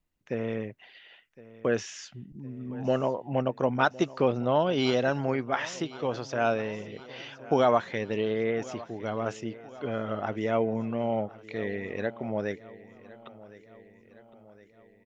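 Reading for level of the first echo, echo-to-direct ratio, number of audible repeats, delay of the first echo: −19.0 dB, −17.5 dB, 4, 1,062 ms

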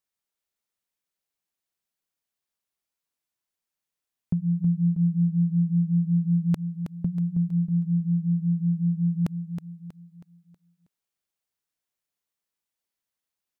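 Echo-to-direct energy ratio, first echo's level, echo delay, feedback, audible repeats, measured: −7.5 dB, −8.5 dB, 320 ms, 41%, 4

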